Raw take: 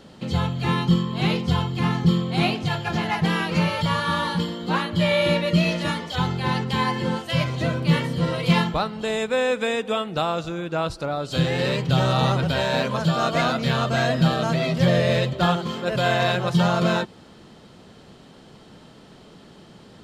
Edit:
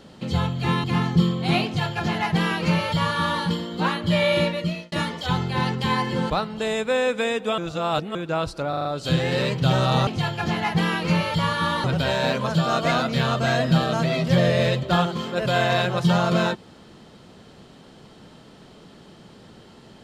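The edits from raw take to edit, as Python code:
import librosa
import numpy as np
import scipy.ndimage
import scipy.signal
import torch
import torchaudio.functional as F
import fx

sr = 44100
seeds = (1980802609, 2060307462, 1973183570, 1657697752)

y = fx.edit(x, sr, fx.cut(start_s=0.84, length_s=0.89),
    fx.duplicate(start_s=2.54, length_s=1.77, to_s=12.34),
    fx.fade_out_span(start_s=5.26, length_s=0.55),
    fx.cut(start_s=7.19, length_s=1.54),
    fx.reverse_span(start_s=10.01, length_s=0.57),
    fx.stutter(start_s=11.12, slice_s=0.04, count=5), tone=tone)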